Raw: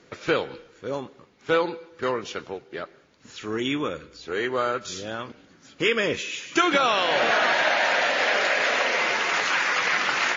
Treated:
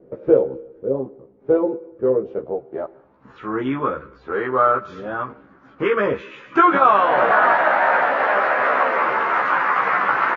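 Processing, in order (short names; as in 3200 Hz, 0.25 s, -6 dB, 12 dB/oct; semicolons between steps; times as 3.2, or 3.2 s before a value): vibrato 0.98 Hz 12 cents; low-pass sweep 500 Hz -> 1200 Hz, 2.29–3.4; doubler 15 ms -2 dB; gain +1.5 dB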